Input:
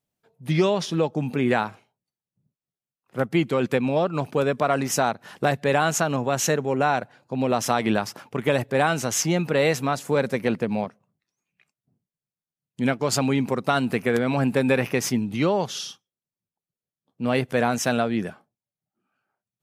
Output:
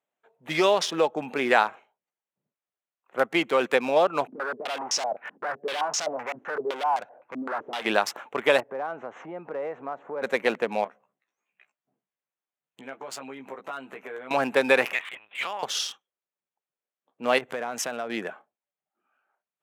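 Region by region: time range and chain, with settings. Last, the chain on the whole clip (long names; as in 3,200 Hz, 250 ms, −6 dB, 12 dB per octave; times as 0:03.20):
0:04.27–0:07.85: tube saturation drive 33 dB, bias 0.4 + low-pass on a step sequencer 7.8 Hz 260–5,400 Hz
0:08.60–0:10.22: low-pass filter 1,100 Hz + downward compressor 2.5 to 1, threshold −34 dBFS
0:10.84–0:14.31: downward compressor 4 to 1, threshold −38 dBFS + double-tracking delay 15 ms −4 dB
0:14.93–0:15.63: high-pass filter 1,400 Hz + linear-prediction vocoder at 8 kHz pitch kept
0:17.38–0:18.10: downward compressor 10 to 1, threshold −28 dBFS + low-shelf EQ 200 Hz +8.5 dB
whole clip: adaptive Wiener filter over 9 samples; high-pass filter 550 Hz 12 dB per octave; level +5 dB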